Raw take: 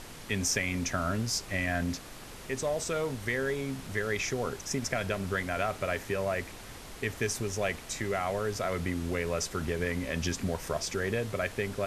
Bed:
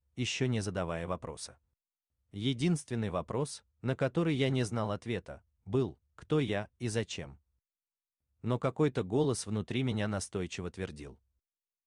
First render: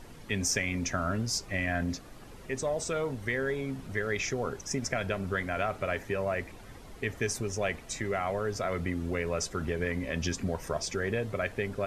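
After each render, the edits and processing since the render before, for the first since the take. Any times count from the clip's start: denoiser 10 dB, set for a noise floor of -46 dBFS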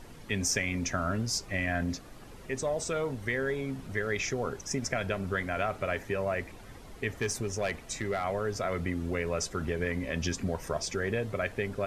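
7.11–8.24 hard clip -23.5 dBFS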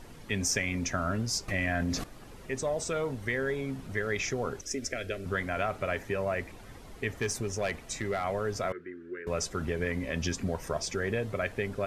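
1.48–2.04 fast leveller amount 70%; 4.61–5.26 fixed phaser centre 380 Hz, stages 4; 8.72–9.27 double band-pass 760 Hz, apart 2.1 oct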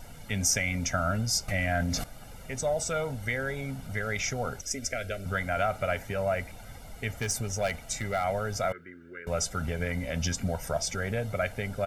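high shelf 10000 Hz +10 dB; comb 1.4 ms, depth 66%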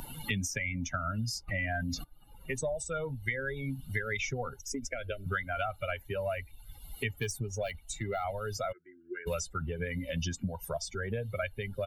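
per-bin expansion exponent 2; three-band squash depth 100%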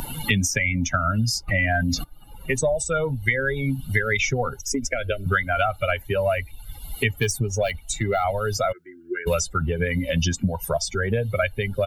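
gain +11.5 dB

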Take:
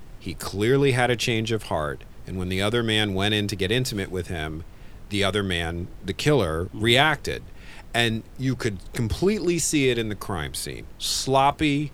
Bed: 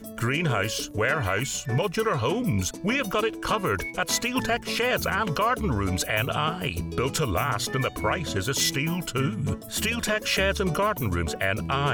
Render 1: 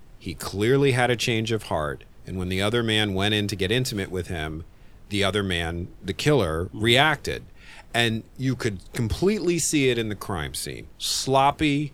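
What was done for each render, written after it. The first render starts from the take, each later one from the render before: noise print and reduce 6 dB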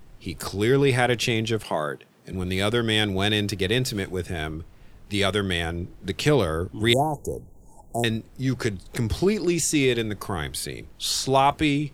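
1.64–2.33 HPF 150 Hz 24 dB/oct; 6.93–8.04 Chebyshev band-stop 900–6600 Hz, order 4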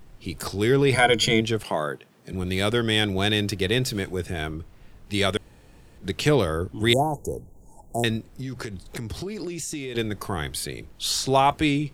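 0.93–1.41 ripple EQ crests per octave 1.8, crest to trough 17 dB; 5.37–5.98 room tone; 8.34–9.95 compressor 12:1, threshold -28 dBFS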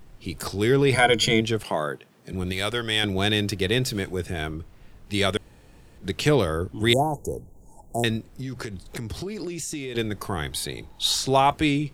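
2.52–3.04 bell 200 Hz -9 dB 2.6 oct; 10.52–11.15 small resonant body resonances 860/3800 Hz, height 13 dB, ringing for 25 ms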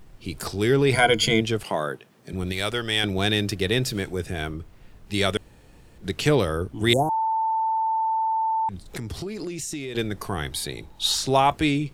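7.09–8.69 bleep 889 Hz -20.5 dBFS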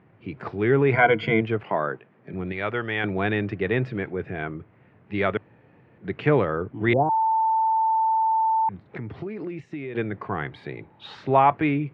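Chebyshev band-pass 110–2200 Hz, order 3; dynamic EQ 1100 Hz, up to +4 dB, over -36 dBFS, Q 1.4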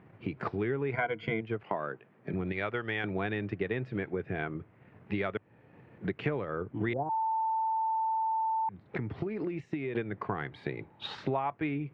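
transient shaper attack +4 dB, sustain -4 dB; compressor 5:1, threshold -30 dBFS, peak gain reduction 17 dB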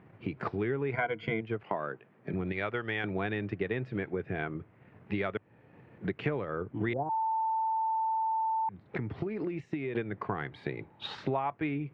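nothing audible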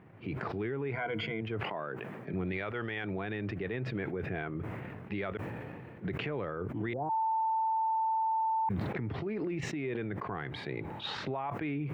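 limiter -27 dBFS, peak gain reduction 10 dB; sustainer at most 22 dB/s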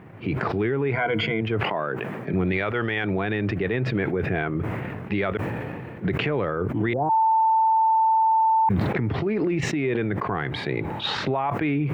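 gain +11 dB

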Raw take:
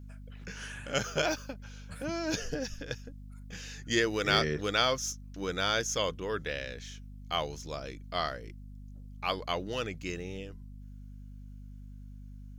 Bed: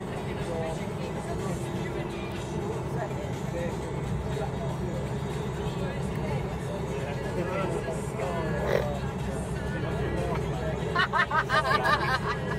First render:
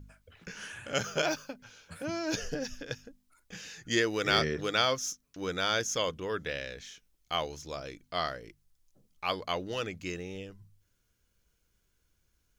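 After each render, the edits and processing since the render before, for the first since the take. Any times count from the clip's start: de-hum 50 Hz, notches 5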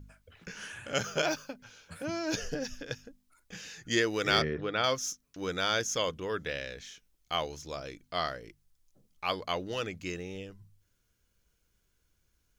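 4.42–4.84 air absorption 340 m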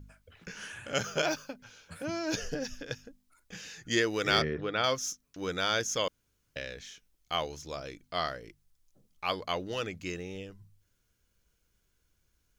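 6.08–6.56 room tone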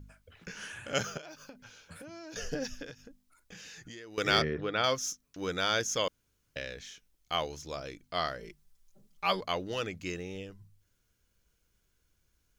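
1.17–2.36 compressor 16:1, threshold -43 dBFS; 2.9–4.18 compressor 8:1, threshold -44 dBFS; 8.39–9.41 comb 5.1 ms, depth 98%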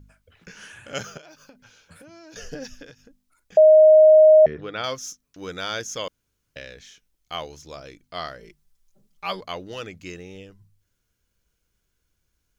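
3.57–4.46 bleep 623 Hz -8 dBFS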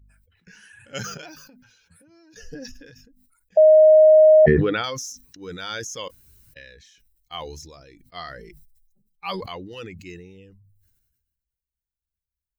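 per-bin expansion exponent 1.5; sustainer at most 39 dB/s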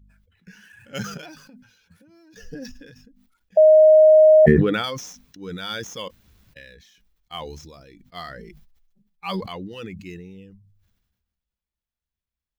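median filter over 5 samples; small resonant body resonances 200/3400 Hz, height 8 dB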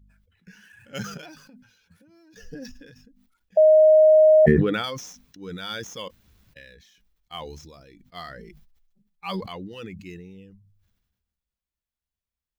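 gain -2.5 dB

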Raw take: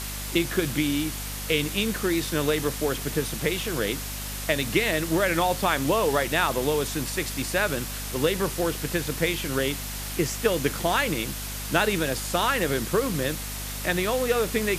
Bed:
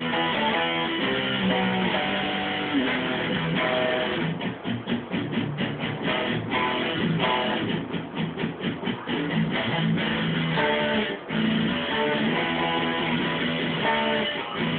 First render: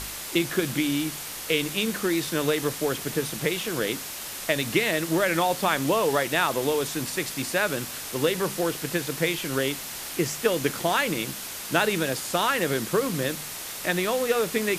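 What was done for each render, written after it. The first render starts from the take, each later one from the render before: de-hum 50 Hz, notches 5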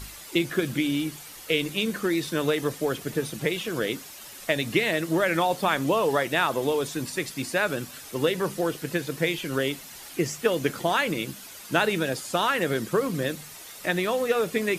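denoiser 10 dB, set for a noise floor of -36 dBFS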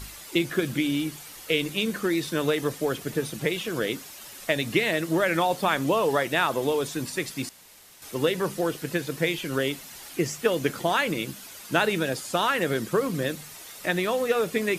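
7.49–8.02 room tone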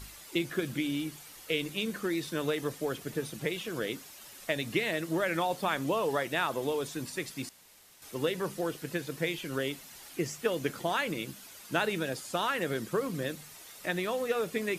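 gain -6.5 dB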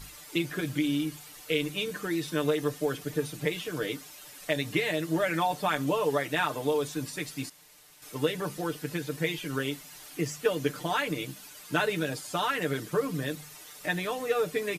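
comb 6.7 ms, depth 75%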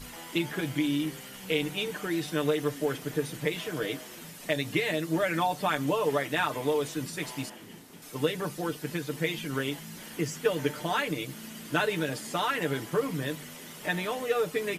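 add bed -21.5 dB

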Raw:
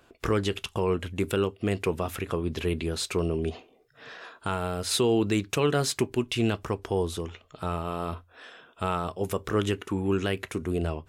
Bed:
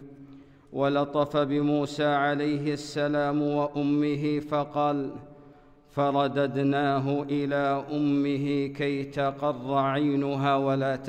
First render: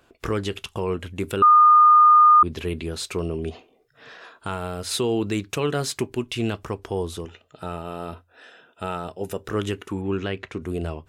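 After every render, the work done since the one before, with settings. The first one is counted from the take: 1.42–2.43 bleep 1220 Hz -9.5 dBFS; 7.25–9.49 notch comb 1100 Hz; 10.01–10.62 LPF 4300 Hz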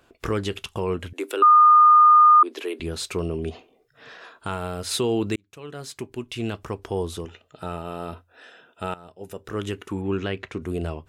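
1.13–2.8 steep high-pass 290 Hz 48 dB/oct; 5.36–6.95 fade in; 8.94–10.01 fade in, from -17 dB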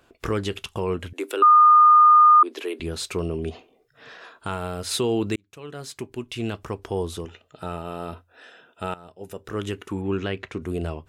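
nothing audible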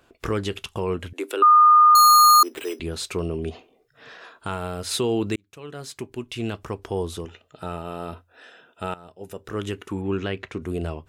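1.95–2.79 careless resampling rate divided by 8×, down none, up hold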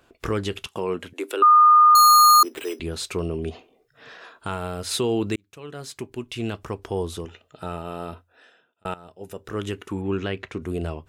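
0.67–2.45 HPF 180 Hz; 8.02–8.85 fade out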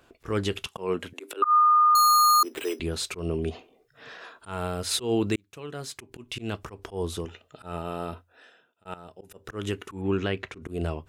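auto swell 0.142 s; compressor, threshold -17 dBFS, peak gain reduction 5.5 dB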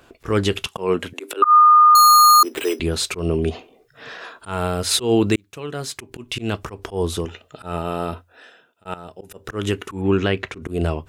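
gain +8 dB

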